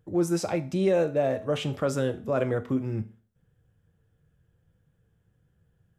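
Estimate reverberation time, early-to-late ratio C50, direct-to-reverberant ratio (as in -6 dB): 0.40 s, 16.0 dB, 8.5 dB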